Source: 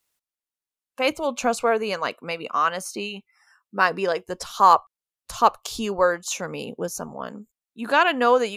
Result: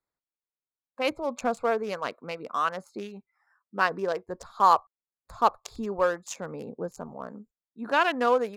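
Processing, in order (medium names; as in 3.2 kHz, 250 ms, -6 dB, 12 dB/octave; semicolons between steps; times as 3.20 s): local Wiener filter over 15 samples; trim -4.5 dB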